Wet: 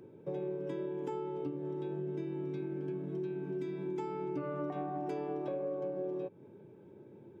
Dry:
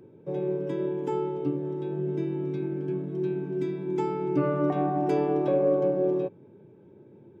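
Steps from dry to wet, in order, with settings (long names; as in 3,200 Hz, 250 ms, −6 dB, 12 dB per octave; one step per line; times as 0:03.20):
low-shelf EQ 350 Hz −4 dB
downward compressor, threshold −35 dBFS, peak gain reduction 13.5 dB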